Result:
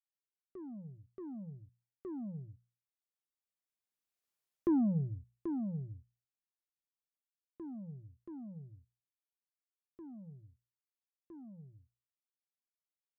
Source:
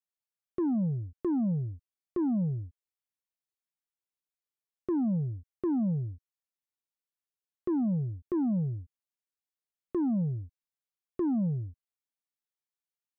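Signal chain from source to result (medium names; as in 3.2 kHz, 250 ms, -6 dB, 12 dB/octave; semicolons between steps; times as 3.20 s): Doppler pass-by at 4.34 s, 18 m/s, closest 5.4 m; hum notches 60/120/180 Hz; trim +4 dB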